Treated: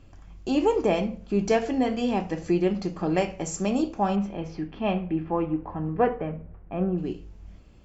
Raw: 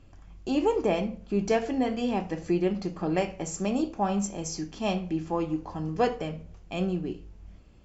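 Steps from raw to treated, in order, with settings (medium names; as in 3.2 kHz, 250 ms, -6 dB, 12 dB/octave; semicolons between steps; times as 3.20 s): 4.15–6.97 s: low-pass 3.4 kHz -> 1.7 kHz 24 dB/octave; trim +2.5 dB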